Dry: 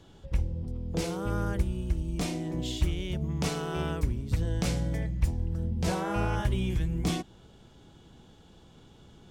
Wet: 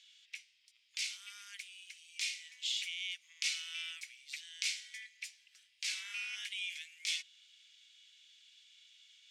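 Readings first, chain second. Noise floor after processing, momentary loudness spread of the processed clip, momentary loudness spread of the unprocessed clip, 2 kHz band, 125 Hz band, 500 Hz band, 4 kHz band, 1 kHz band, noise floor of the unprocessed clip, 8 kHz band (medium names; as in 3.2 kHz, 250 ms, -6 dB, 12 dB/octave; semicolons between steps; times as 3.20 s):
-71 dBFS, 23 LU, 4 LU, +0.5 dB, under -40 dB, under -40 dB, +3.5 dB, -28.0 dB, -55 dBFS, +0.5 dB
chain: elliptic high-pass 2.2 kHz, stop band 80 dB; distance through air 62 m; trim +6 dB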